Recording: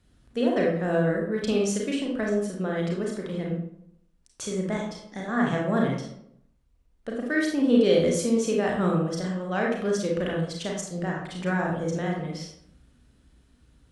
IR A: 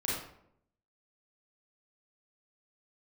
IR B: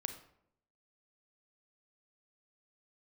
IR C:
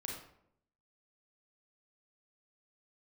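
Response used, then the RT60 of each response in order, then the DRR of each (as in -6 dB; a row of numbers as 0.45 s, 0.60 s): C; 0.70 s, 0.75 s, 0.70 s; -7.0 dB, 7.0 dB, -2.0 dB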